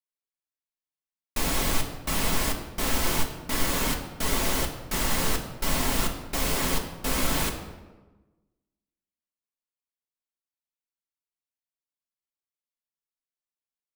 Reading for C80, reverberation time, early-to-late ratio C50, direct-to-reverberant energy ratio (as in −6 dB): 9.5 dB, 1.2 s, 8.0 dB, 0.5 dB